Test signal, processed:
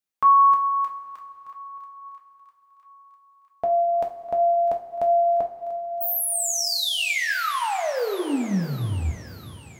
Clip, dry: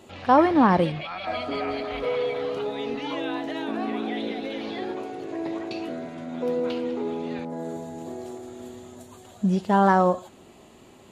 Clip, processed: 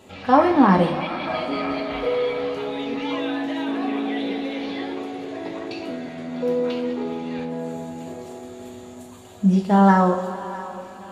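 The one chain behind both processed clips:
feedback echo with a high-pass in the loop 651 ms, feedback 62%, high-pass 910 Hz, level −15 dB
coupled-rooms reverb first 0.28 s, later 4 s, from −18 dB, DRR 0.5 dB

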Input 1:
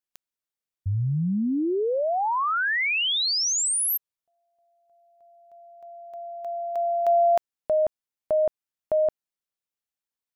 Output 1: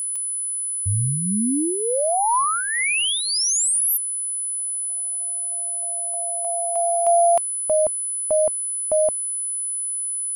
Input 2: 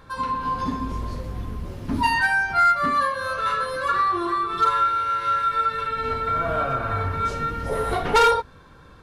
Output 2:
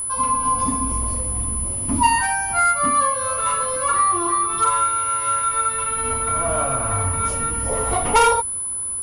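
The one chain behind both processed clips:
steady tone 10,000 Hz −27 dBFS
thirty-one-band graphic EQ 160 Hz −7 dB, 400 Hz −8 dB, 1,000 Hz +3 dB, 1,600 Hz −11 dB, 4,000 Hz −9 dB
level +3.5 dB

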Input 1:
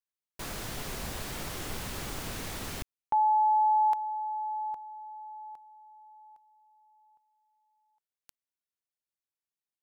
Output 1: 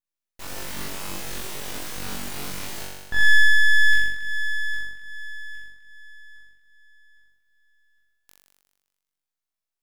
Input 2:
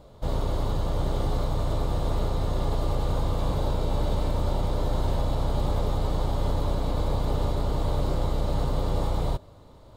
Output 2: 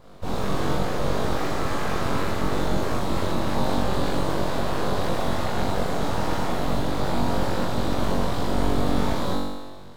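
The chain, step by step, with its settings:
flutter between parallel walls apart 3.6 metres, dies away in 1.3 s
full-wave rectification

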